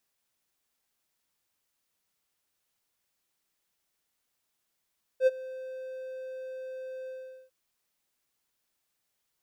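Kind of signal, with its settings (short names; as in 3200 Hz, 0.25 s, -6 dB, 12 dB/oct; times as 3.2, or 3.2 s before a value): ADSR triangle 519 Hz, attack 68 ms, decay 30 ms, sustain -20.5 dB, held 1.88 s, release 0.422 s -14.5 dBFS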